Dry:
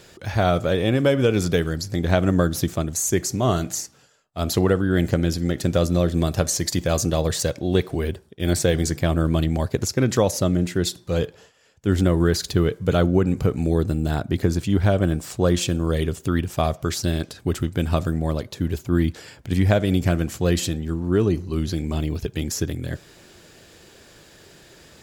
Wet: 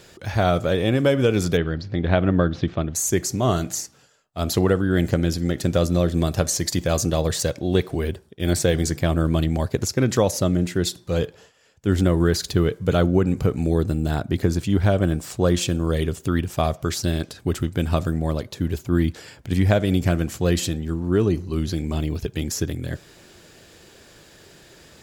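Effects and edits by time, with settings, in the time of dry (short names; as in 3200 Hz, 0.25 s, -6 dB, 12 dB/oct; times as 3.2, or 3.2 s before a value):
1.57–2.95 LPF 3700 Hz 24 dB/oct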